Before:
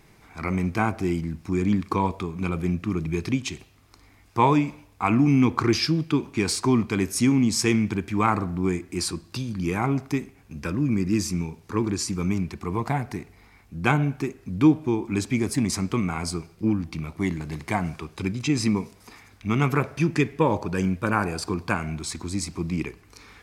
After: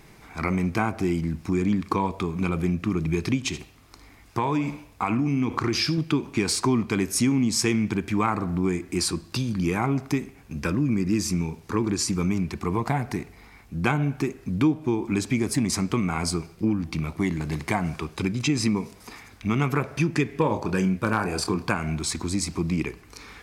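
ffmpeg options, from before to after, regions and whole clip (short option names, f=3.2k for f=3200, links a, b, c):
-filter_complex "[0:a]asettb=1/sr,asplit=3[a][b][c];[a]atrim=end=3.374[d];[b]atrim=start=3.37:end=5.98,asetpts=PTS-STARTPTS,afade=t=in:d=0.004:c=qsin,afade=t=out:st=2.606:d=0.004:c=qsin,acompressor=threshold=-22dB:ratio=4:attack=3.2:release=140:knee=1:detection=peak,aecho=1:1:77:0.178,atrim=end_sample=115101[e];[c]atrim=start=5.976[f];[d][e]acrossfade=d=0.004:c1=hsin:c2=qsin[g];[g][f]acrossfade=d=0.004:c1=qsin:c2=hsin,asettb=1/sr,asplit=3[h][i][j];[h]atrim=end=20.264[k];[i]atrim=start=20.26:end=21.69,asetpts=PTS-STARTPTS,afade=t=in:d=0.004:c=qsin,afade=t=out:st=1.426:d=0.004:c=qsin,asoftclip=type=hard:threshold=-9.5dB,asplit=2[l][m];[m]adelay=27,volume=-9dB[n];[l][n]amix=inputs=2:normalize=0,atrim=end_sample=63063[o];[j]atrim=start=21.686[p];[k][o]acrossfade=d=0.004:c1=hsin:c2=qsin[q];[q][p]acrossfade=d=0.004:c1=qsin:c2=hsin,acompressor=threshold=-26dB:ratio=2.5,equalizer=f=96:t=o:w=0.21:g=-4.5,volume=4.5dB"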